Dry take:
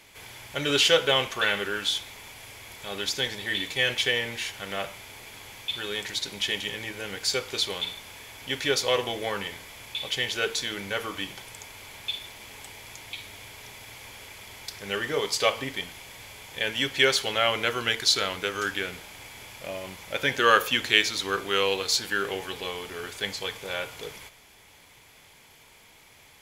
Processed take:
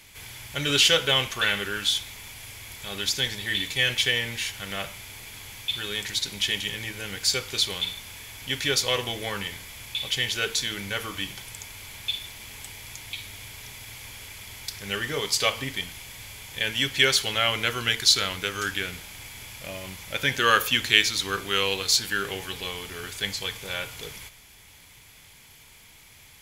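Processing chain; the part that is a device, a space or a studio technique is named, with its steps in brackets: smiley-face EQ (bass shelf 190 Hz +5 dB; peaking EQ 540 Hz -7.5 dB 2.6 oct; treble shelf 8.7 kHz +4 dB); trim +3 dB

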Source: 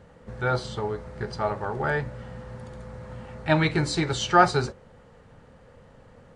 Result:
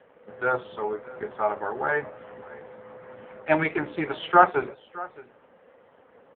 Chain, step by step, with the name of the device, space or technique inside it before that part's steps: satellite phone (band-pass 320–3100 Hz; delay 616 ms -19.5 dB; trim +3 dB; AMR-NB 5.15 kbps 8 kHz)

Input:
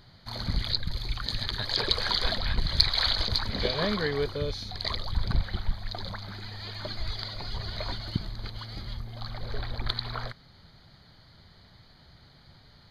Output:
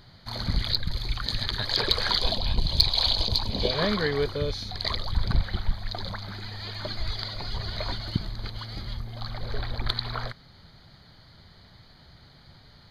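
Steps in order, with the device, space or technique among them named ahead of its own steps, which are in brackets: parallel distortion (in parallel at -6 dB: hard clipper -14 dBFS, distortion -18 dB); 2.19–3.71 s: on the sum: high-order bell 1.6 kHz -12.5 dB 1 oct; trim -1 dB

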